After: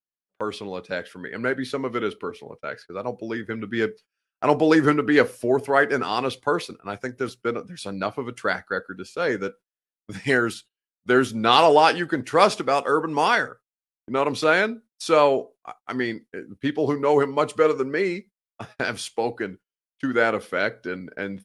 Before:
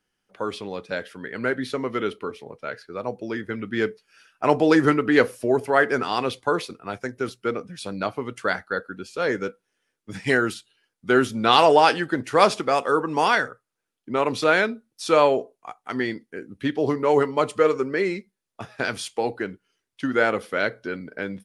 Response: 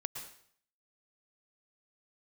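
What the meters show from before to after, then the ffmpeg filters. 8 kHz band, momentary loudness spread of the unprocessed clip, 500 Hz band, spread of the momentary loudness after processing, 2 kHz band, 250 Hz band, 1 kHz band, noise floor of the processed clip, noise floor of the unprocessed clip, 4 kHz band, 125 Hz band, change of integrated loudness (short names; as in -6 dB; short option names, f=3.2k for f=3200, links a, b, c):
0.0 dB, 15 LU, 0.0 dB, 16 LU, 0.0 dB, 0.0 dB, 0.0 dB, under -85 dBFS, -82 dBFS, 0.0 dB, 0.0 dB, 0.0 dB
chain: -af "agate=range=-28dB:threshold=-43dB:ratio=16:detection=peak"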